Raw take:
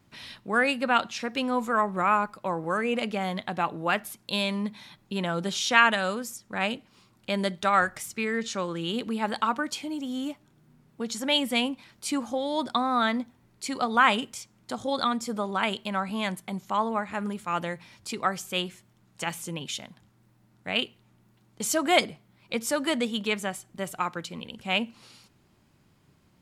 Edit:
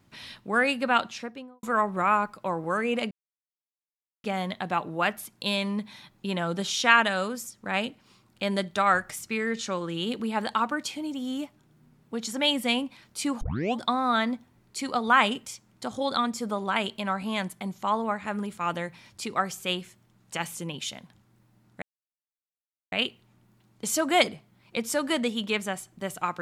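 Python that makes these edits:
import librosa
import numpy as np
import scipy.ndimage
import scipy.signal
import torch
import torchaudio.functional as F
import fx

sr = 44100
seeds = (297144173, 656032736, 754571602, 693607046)

y = fx.studio_fade_out(x, sr, start_s=0.99, length_s=0.64)
y = fx.edit(y, sr, fx.insert_silence(at_s=3.11, length_s=1.13),
    fx.tape_start(start_s=12.28, length_s=0.39),
    fx.insert_silence(at_s=20.69, length_s=1.1), tone=tone)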